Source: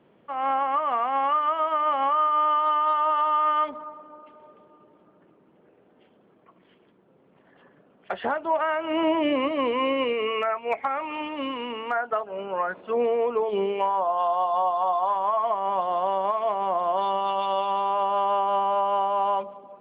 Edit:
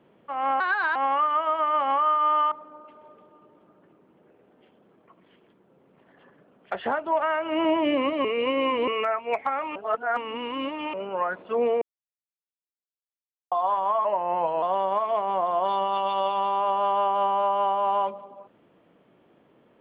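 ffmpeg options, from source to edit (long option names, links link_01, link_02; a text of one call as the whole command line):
ffmpeg -i in.wav -filter_complex "[0:a]asplit=12[link_01][link_02][link_03][link_04][link_05][link_06][link_07][link_08][link_09][link_10][link_11][link_12];[link_01]atrim=end=0.604[link_13];[link_02]atrim=start=0.6:end=1.08,asetpts=PTS-STARTPTS,asetrate=59535,aresample=44100[link_14];[link_03]atrim=start=1.076:end=2.642[link_15];[link_04]atrim=start=3.898:end=9.632[link_16];[link_05]atrim=start=9.628:end=10.262,asetpts=PTS-STARTPTS,areverse[link_17];[link_06]atrim=start=10.258:end=11.142[link_18];[link_07]atrim=start=11.138:end=12.322,asetpts=PTS-STARTPTS,areverse[link_19];[link_08]atrim=start=12.318:end=13.2,asetpts=PTS-STARTPTS,afade=type=out:start_time=0.878:duration=0.004:curve=hsin[link_20];[link_09]atrim=start=13.2:end=14.9,asetpts=PTS-STARTPTS,volume=0[link_21];[link_10]atrim=start=14.9:end=15.434,asetpts=PTS-STARTPTS,afade=type=in:duration=0.004:curve=hsin[link_22];[link_11]atrim=start=15.43:end=15.95,asetpts=PTS-STARTPTS,asetrate=39690,aresample=44100[link_23];[link_12]atrim=start=15.946[link_24];[link_13][link_14]acrossfade=duration=0.004:curve1=hsin:curve2=hsin[link_25];[link_25][link_15]acrossfade=duration=0.004:curve1=hsin:curve2=hsin[link_26];[link_26][link_16]acrossfade=duration=0.004:curve1=hsin:curve2=hsin[link_27];[link_27][link_17]acrossfade=duration=0.004:curve1=hsin:curve2=hsin[link_28];[link_28][link_18]acrossfade=duration=0.004:curve1=hsin:curve2=hsin[link_29];[link_29][link_19]acrossfade=duration=0.004:curve1=hsin:curve2=hsin[link_30];[link_20][link_21][link_22]concat=n=3:v=0:a=1[link_31];[link_30][link_31]acrossfade=duration=0.004:curve1=hsin:curve2=hsin[link_32];[link_32][link_23]acrossfade=duration=0.004:curve1=hsin:curve2=hsin[link_33];[link_33][link_24]acrossfade=duration=0.004:curve1=hsin:curve2=hsin" out.wav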